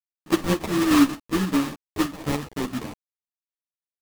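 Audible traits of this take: a quantiser's noise floor 6-bit, dither none; chopped level 3.3 Hz, depth 60%, duty 75%; aliases and images of a low sample rate 1.5 kHz, jitter 20%; a shimmering, thickened sound

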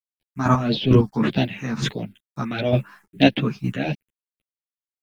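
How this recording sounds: a quantiser's noise floor 10-bit, dither none; phasing stages 4, 1.6 Hz, lowest notch 510–1200 Hz; chopped level 2.2 Hz, depth 60%, duty 20%; a shimmering, thickened sound

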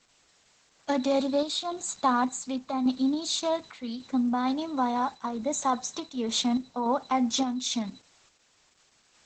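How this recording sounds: a quantiser's noise floor 10-bit, dither triangular; random-step tremolo; Opus

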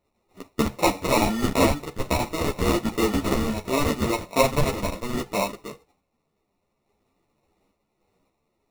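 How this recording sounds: a quantiser's noise floor 12-bit, dither triangular; random-step tremolo; aliases and images of a low sample rate 1.6 kHz, jitter 0%; a shimmering, thickened sound

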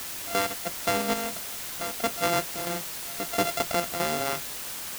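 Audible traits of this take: a buzz of ramps at a fixed pitch in blocks of 64 samples; chopped level 1.5 Hz, depth 60%, duty 70%; a quantiser's noise floor 6-bit, dither triangular

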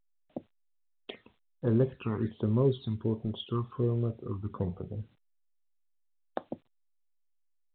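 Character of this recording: phasing stages 12, 1.3 Hz, lowest notch 500–2600 Hz; a quantiser's noise floor 12-bit, dither none; A-law

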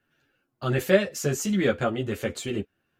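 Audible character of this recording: tremolo triangle 1.4 Hz, depth 35%; a shimmering, thickened sound

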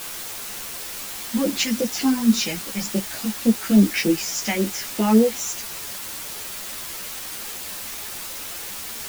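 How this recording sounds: phasing stages 2, 3.5 Hz, lowest notch 400–1900 Hz; a quantiser's noise floor 6-bit, dither triangular; a shimmering, thickened sound

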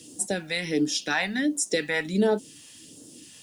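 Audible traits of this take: phasing stages 2, 1.4 Hz, lowest notch 340–2100 Hz; a quantiser's noise floor 12-bit, dither triangular

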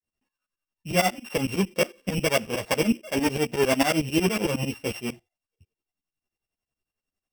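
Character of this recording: a buzz of ramps at a fixed pitch in blocks of 16 samples; tremolo saw up 11 Hz, depth 100%; a shimmering, thickened sound

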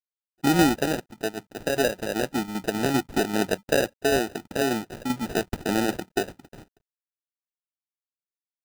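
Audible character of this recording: a quantiser's noise floor 12-bit, dither none; tremolo saw down 5.1 Hz, depth 50%; aliases and images of a low sample rate 1.1 kHz, jitter 0%

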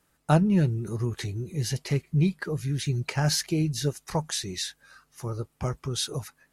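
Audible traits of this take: noise floor -70 dBFS; spectral tilt -5.0 dB/octave

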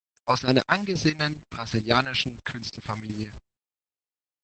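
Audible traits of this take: phasing stages 2, 2.3 Hz, lowest notch 360–1200 Hz; a quantiser's noise floor 8-bit, dither none; chopped level 4.2 Hz, depth 65%, duty 60%; Opus

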